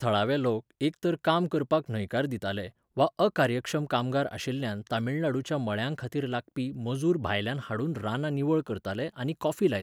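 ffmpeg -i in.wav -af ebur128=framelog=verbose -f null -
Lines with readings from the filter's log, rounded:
Integrated loudness:
  I:         -29.4 LUFS
  Threshold: -39.4 LUFS
Loudness range:
  LRA:         2.4 LU
  Threshold: -49.5 LUFS
  LRA low:   -30.7 LUFS
  LRA high:  -28.3 LUFS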